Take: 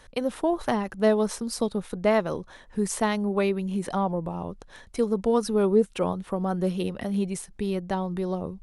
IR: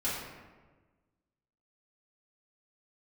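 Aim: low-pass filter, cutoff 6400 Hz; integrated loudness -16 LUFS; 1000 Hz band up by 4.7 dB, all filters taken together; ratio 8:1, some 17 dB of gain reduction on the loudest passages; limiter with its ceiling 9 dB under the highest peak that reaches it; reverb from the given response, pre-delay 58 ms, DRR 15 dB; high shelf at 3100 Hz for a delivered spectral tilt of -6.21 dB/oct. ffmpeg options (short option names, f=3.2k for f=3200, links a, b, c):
-filter_complex "[0:a]lowpass=6.4k,equalizer=f=1k:t=o:g=6.5,highshelf=f=3.1k:g=-5,acompressor=threshold=-33dB:ratio=8,alimiter=level_in=5.5dB:limit=-24dB:level=0:latency=1,volume=-5.5dB,asplit=2[a][b];[1:a]atrim=start_sample=2205,adelay=58[c];[b][c]afir=irnorm=-1:irlink=0,volume=-21.5dB[d];[a][d]amix=inputs=2:normalize=0,volume=23.5dB"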